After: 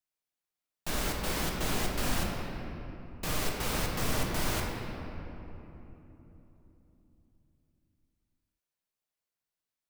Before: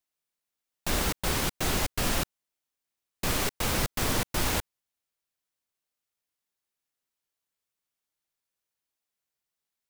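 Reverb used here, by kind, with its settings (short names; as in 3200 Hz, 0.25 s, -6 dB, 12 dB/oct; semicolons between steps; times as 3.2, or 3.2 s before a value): shoebox room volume 200 m³, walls hard, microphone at 0.51 m; gain -6.5 dB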